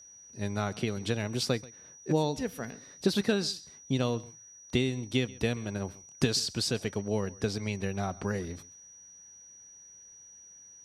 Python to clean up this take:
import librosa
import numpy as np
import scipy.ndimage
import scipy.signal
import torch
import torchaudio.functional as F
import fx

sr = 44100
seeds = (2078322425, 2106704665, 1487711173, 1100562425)

y = fx.notch(x, sr, hz=5800.0, q=30.0)
y = fx.fix_echo_inverse(y, sr, delay_ms=134, level_db=-21.5)